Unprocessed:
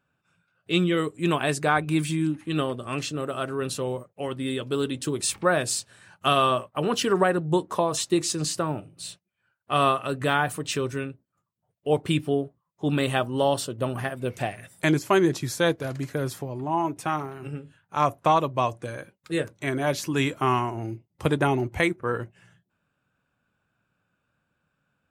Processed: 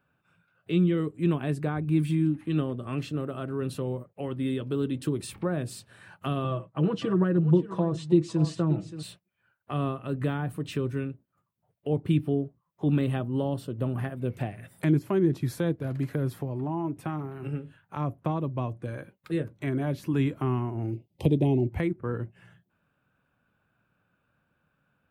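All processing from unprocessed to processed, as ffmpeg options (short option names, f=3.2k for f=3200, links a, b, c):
-filter_complex "[0:a]asettb=1/sr,asplit=3[a][b][c];[a]atrim=end=6.444[d];[b]atrim=start=6.44:end=9.03,asetpts=PTS-STARTPTS,afade=t=in:d=0.004:c=qsin,afade=t=out:st=2.586:d=0.004:c=qsin,lowpass=f=7.8k:w=0.5412,lowpass=f=7.8k:w=1.3066,aecho=1:1:6.1:0.74,atrim=end_sample=114219,aecho=1:1:576:0.168,atrim=end_sample=114219[e];[c]atrim=start=9.026[f];[d][e]acrossfade=d=0.004:c1=hsin:c2=qsin[g];[g][f]acrossfade=d=0.004:c1=qsin:c2=hsin,asettb=1/sr,asplit=3[h][i][j];[h]atrim=end=20.934[k];[i]atrim=start=20.93:end=21.7,asetpts=PTS-STARTPTS,afade=t=in:d=0.004:c=qsin,afade=t=out:st=0.766:d=0.004:c=qsin,asuperstop=centerf=1400:order=4:qfactor=0.55,equalizer=f=1.8k:w=0.33:g=11.5[l];[j]atrim=start=21.696[m];[k][l]acrossfade=d=0.004:c1=hsin:c2=qsin[n];[n][m]acrossfade=d=0.004:c1=qsin:c2=hsin,equalizer=f=6.6k:t=o:w=1.2:g=-12,acrossover=split=330[o][p];[p]acompressor=threshold=-43dB:ratio=3[q];[o][q]amix=inputs=2:normalize=0,volume=2.5dB"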